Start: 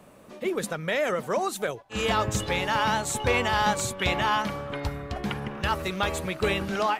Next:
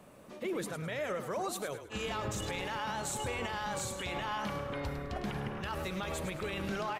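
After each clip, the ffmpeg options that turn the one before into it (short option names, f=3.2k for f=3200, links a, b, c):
-filter_complex "[0:a]alimiter=limit=-24dB:level=0:latency=1:release=38,asplit=5[a][b][c][d][e];[b]adelay=104,afreqshift=-34,volume=-9.5dB[f];[c]adelay=208,afreqshift=-68,volume=-19.1dB[g];[d]adelay=312,afreqshift=-102,volume=-28.8dB[h];[e]adelay=416,afreqshift=-136,volume=-38.4dB[i];[a][f][g][h][i]amix=inputs=5:normalize=0,volume=-4dB"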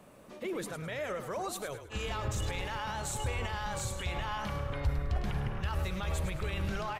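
-af "asubboost=boost=7.5:cutoff=91,asoftclip=type=tanh:threshold=-19.5dB"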